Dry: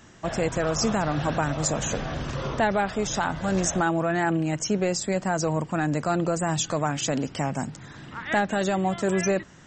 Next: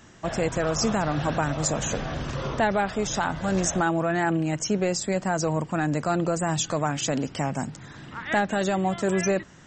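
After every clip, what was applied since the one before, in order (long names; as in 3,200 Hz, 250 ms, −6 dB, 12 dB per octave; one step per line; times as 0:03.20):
no processing that can be heard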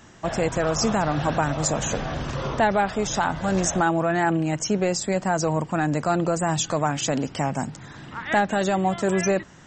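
parametric band 850 Hz +2.5 dB
level +1.5 dB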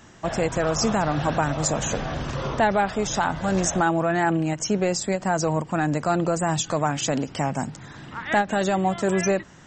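every ending faded ahead of time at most 320 dB per second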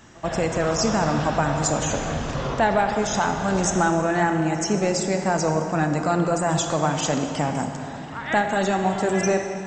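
backwards echo 83 ms −22 dB
convolution reverb RT60 3.2 s, pre-delay 25 ms, DRR 4.5 dB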